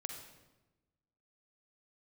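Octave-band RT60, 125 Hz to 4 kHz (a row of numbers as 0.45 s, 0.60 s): 1.5 s, 1.4 s, 1.2 s, 1.0 s, 0.90 s, 0.80 s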